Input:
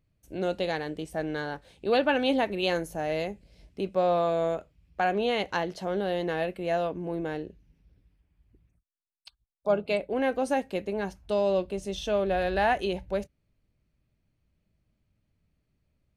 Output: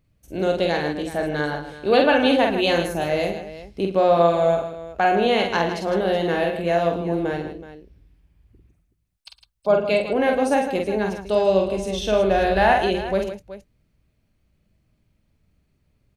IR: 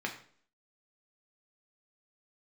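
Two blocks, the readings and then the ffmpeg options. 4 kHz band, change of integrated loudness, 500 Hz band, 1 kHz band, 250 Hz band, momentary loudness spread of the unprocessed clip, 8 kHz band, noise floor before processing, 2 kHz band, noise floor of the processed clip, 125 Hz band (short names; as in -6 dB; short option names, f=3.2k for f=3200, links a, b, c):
+8.0 dB, +8.0 dB, +8.0 dB, +8.0 dB, +8.0 dB, 10 LU, n/a, -77 dBFS, +8.0 dB, -68 dBFS, +8.0 dB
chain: -af "aecho=1:1:47|110|157|375:0.631|0.15|0.316|0.2,volume=6dB"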